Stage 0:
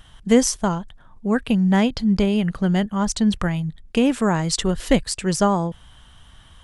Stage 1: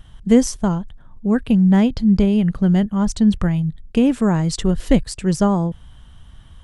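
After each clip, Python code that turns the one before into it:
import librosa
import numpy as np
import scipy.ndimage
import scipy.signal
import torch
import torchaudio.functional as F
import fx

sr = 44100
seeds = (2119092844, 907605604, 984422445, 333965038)

y = fx.low_shelf(x, sr, hz=400.0, db=11.0)
y = y * 10.0 ** (-4.5 / 20.0)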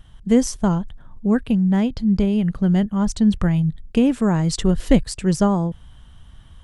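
y = fx.rider(x, sr, range_db=10, speed_s=0.5)
y = y * 10.0 ** (-1.5 / 20.0)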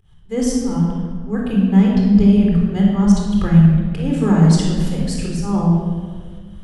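y = fx.auto_swell(x, sr, attack_ms=161.0)
y = fx.room_shoebox(y, sr, seeds[0], volume_m3=2200.0, walls='mixed', distance_m=4.0)
y = y * 10.0 ** (-3.5 / 20.0)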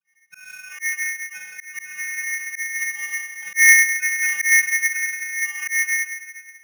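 y = fx.vocoder(x, sr, bands=32, carrier='square', carrier_hz=165.0)
y = fx.auto_swell(y, sr, attack_ms=205.0)
y = y * np.sign(np.sin(2.0 * np.pi * 2000.0 * np.arange(len(y)) / sr))
y = y * 10.0 ** (-2.0 / 20.0)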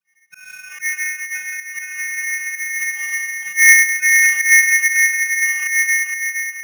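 y = fx.echo_feedback(x, sr, ms=467, feedback_pct=32, wet_db=-7)
y = y * 10.0 ** (2.5 / 20.0)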